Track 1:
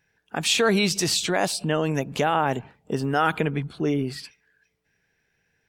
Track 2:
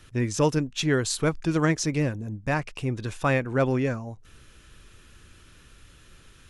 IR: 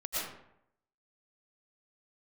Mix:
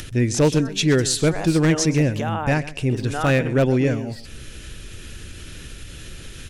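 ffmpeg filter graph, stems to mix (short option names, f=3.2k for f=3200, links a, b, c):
-filter_complex "[0:a]volume=-11dB,afade=t=in:st=0.9:d=0.72:silence=0.266073[a];[1:a]equalizer=f=1.1k:w=1.7:g=-10.5,acompressor=mode=upward:threshold=-33dB:ratio=2.5,volume=1dB,asplit=2[b][c];[c]volume=-17dB,aecho=0:1:127|254|381|508:1|0.29|0.0841|0.0244[d];[a][b][d]amix=inputs=3:normalize=0,acontrast=48,aeval=exprs='0.355*(abs(mod(val(0)/0.355+3,4)-2)-1)':c=same"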